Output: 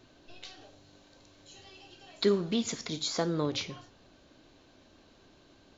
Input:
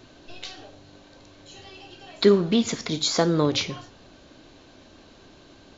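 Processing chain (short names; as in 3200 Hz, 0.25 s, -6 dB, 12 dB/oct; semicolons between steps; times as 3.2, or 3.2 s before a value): 0.61–3.03 high shelf 5600 Hz +8 dB; gain -9 dB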